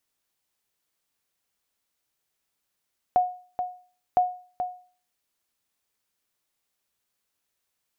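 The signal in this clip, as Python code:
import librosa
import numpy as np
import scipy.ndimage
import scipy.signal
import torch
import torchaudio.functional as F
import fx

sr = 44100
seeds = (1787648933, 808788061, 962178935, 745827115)

y = fx.sonar_ping(sr, hz=726.0, decay_s=0.42, every_s=1.01, pings=2, echo_s=0.43, echo_db=-8.5, level_db=-13.0)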